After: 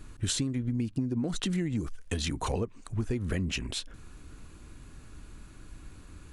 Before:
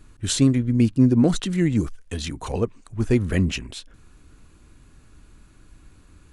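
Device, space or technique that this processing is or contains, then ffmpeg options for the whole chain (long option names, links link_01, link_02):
serial compression, leveller first: -af "acompressor=threshold=-21dB:ratio=3,acompressor=threshold=-30dB:ratio=6,volume=2.5dB"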